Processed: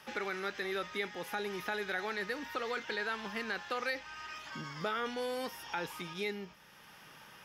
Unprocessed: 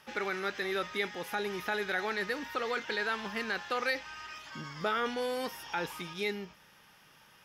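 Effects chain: three bands compressed up and down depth 40%; trim -3.5 dB

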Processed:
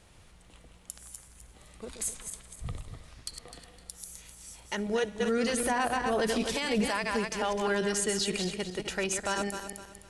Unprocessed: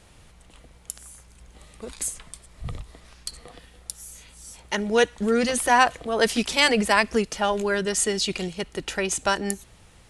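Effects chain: backward echo that repeats 128 ms, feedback 55%, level -7 dB; 5.60–6.89 s: bass shelf 460 Hz +6 dB; peak limiter -14.5 dBFS, peak gain reduction 11.5 dB; trim -5 dB

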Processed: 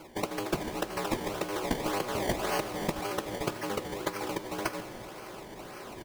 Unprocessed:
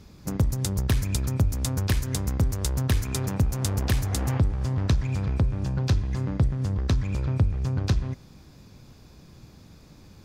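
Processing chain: comb 4.5 ms, depth 45%; reverse; upward compressor, threshold -28 dBFS; reverse; mistuned SSB -82 Hz 440–3000 Hz; decimation with a swept rate 23×, swing 100% 1.1 Hz; on a send at -11 dB: reverberation RT60 5.6 s, pre-delay 8 ms; on the sum: time stretch by phase-locked vocoder 0.59×; trim +8.5 dB

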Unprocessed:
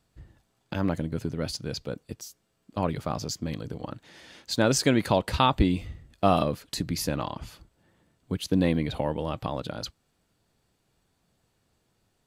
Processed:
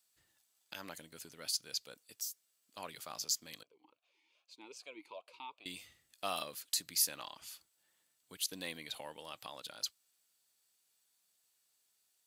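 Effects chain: differentiator; 3.63–5.66 s: talking filter a-u 2.5 Hz; trim +2.5 dB

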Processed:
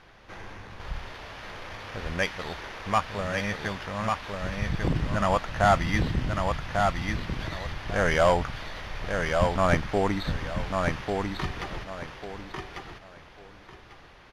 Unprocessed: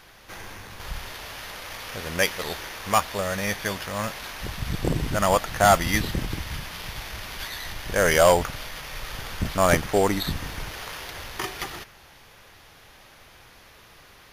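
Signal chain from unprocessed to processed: tape spacing loss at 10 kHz 20 dB; feedback delay 1146 ms, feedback 22%, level -4 dB; dynamic bell 450 Hz, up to -5 dB, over -37 dBFS, Q 1.1

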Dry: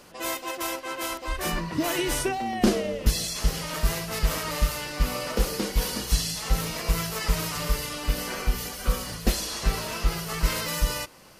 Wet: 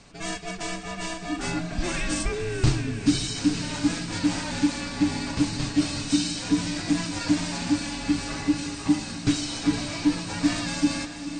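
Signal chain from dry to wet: peaking EQ 1.3 kHz -2.5 dB; frequency shift -340 Hz; echo that smears into a reverb 483 ms, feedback 54%, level -10 dB; MP2 96 kbps 32 kHz

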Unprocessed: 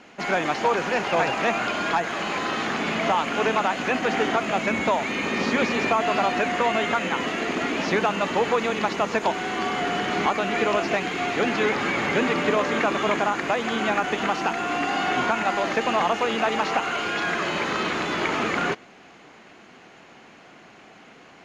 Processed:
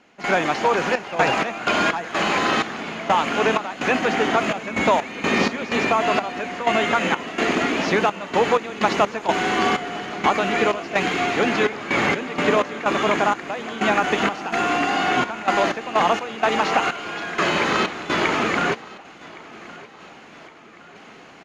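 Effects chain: trance gate ".xxx.x.x.xx..xx" 63 bpm -12 dB; gain riding within 4 dB 0.5 s; feedback delay 1115 ms, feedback 52%, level -20.5 dB; trim +4.5 dB

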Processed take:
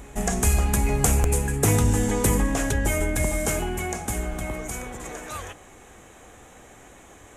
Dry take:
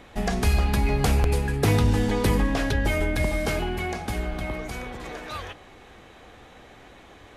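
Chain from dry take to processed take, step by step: resonant high shelf 5.7 kHz +8.5 dB, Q 3; reverse echo 835 ms -23 dB

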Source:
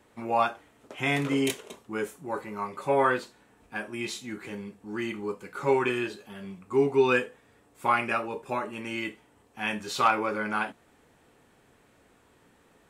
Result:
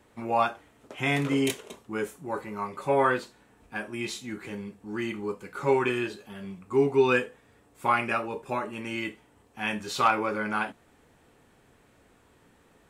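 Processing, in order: bass shelf 120 Hz +5 dB

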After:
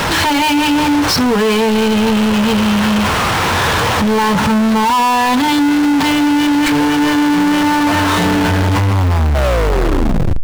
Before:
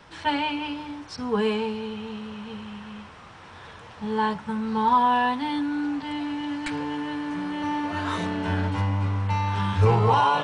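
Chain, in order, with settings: tape stop on the ending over 1.50 s; power-law waveshaper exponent 0.35; loudness maximiser +18 dB; trim -8.5 dB

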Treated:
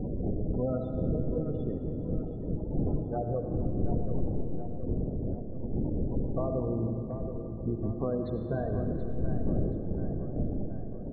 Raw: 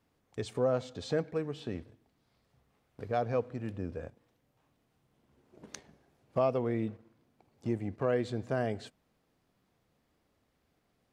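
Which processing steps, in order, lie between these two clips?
wind noise 350 Hz -33 dBFS; low-pass 3.3 kHz 6 dB/octave; bass shelf 200 Hz +7 dB; band-stop 2.6 kHz, Q 6.5; de-hum 109.1 Hz, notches 30; compression 10:1, threshold -28 dBFS, peak gain reduction 16 dB; harmony voices -12 st -9 dB, +3 st -15 dB; spectral gate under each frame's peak -20 dB strong; on a send: tape echo 728 ms, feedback 62%, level -8 dB, low-pass 2.5 kHz; on the sum: algorithmic reverb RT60 2.9 s, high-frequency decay 0.7×, pre-delay 45 ms, DRR 5.5 dB; trim +1 dB

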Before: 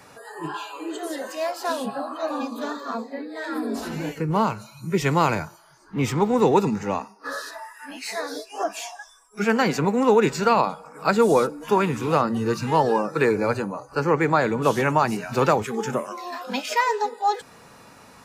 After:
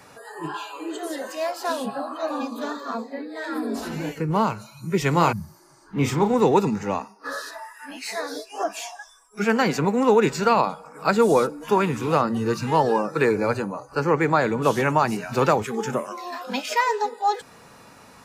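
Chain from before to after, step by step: 5.10–6.34 s: doubling 35 ms -7 dB; 5.35–5.78 s: spectral replace 220–10000 Hz after

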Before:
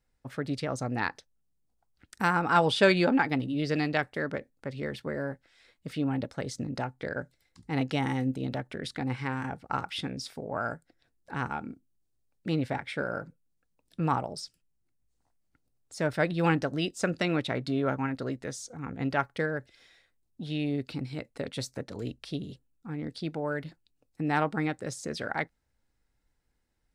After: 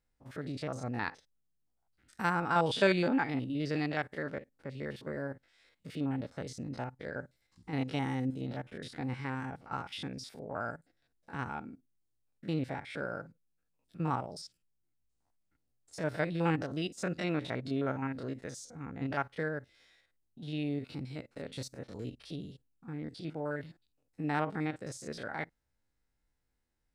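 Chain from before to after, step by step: spectrogram pixelated in time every 50 ms; trim -4 dB

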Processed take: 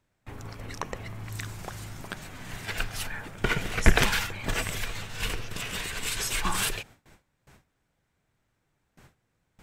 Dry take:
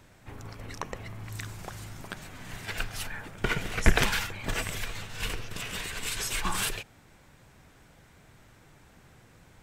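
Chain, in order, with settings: gate with hold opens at -44 dBFS; trim +2 dB

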